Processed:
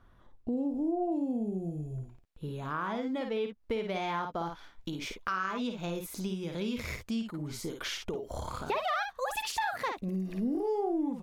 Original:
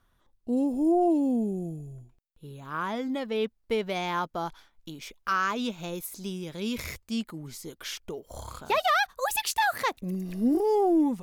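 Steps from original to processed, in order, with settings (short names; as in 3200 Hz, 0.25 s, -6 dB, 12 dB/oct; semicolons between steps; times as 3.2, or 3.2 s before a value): LPF 1400 Hz 6 dB/oct, from 1.12 s 3300 Hz; early reflections 53 ms -6.5 dB, 63 ms -15.5 dB; compressor 3:1, threshold -43 dBFS, peak gain reduction 18 dB; gain +8 dB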